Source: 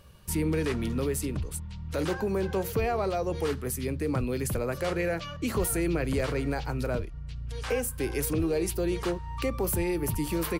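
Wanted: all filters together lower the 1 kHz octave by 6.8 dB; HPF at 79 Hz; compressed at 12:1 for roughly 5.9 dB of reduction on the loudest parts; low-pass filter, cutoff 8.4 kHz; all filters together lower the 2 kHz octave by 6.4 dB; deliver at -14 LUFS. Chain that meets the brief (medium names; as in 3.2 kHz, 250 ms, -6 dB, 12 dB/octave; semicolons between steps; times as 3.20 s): high-pass 79 Hz; low-pass 8.4 kHz; peaking EQ 1 kHz -9 dB; peaking EQ 2 kHz -5.5 dB; compression 12:1, threshold -30 dBFS; trim +22 dB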